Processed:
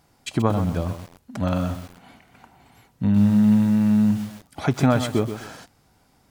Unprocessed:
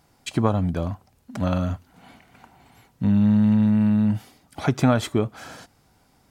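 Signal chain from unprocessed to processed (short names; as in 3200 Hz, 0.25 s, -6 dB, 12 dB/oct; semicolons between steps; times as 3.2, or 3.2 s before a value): lo-fi delay 0.128 s, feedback 35%, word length 6-bit, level -9 dB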